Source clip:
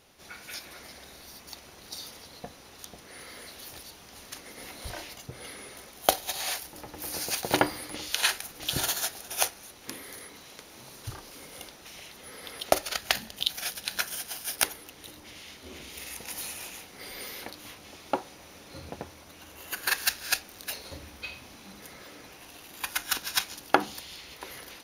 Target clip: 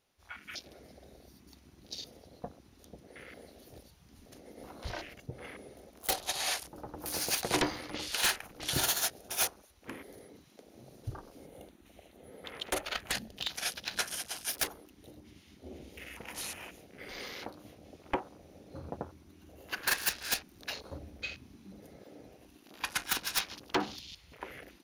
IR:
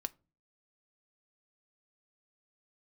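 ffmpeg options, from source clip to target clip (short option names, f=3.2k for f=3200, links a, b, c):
-filter_complex "[0:a]aeval=exprs='0.0944*(abs(mod(val(0)/0.0944+3,4)-2)-1)':c=same,asettb=1/sr,asplit=3[a][b][c];[a]atrim=end=11.464[d];[b]atrim=start=11.46:end=13.12,asetpts=PTS-STARTPTS,afade=t=in:d=0.004:c=qsin,afade=t=out:st=1.656:d=0.004:c=qsin,equalizer=f=5.2k:w=2.9:g=-11[e];[c]atrim=start=13.116[f];[d][e]acrossfade=d=0.004:c1=hsin:c2=qsin[g];[g][f]acrossfade=d=0.004:c1=qsin:c2=hsin,afwtdn=0.00631"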